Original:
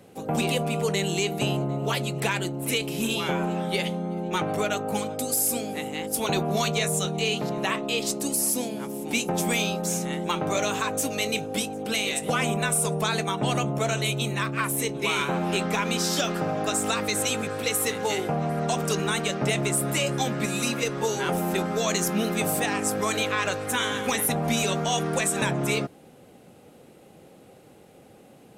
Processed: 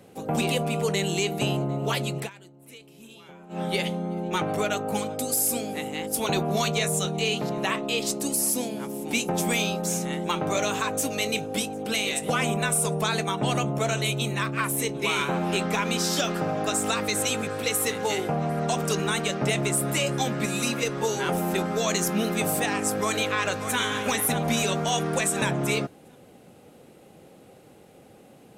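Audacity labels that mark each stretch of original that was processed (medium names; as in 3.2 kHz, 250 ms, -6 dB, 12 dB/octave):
2.170000	3.620000	dip -21 dB, fades 0.13 s
22.960000	23.790000	echo throw 590 ms, feedback 35%, level -9 dB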